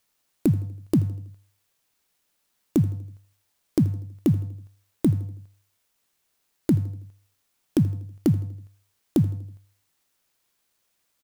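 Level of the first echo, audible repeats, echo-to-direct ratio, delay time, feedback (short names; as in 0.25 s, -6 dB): -20.0 dB, 3, -19.0 dB, 81 ms, 48%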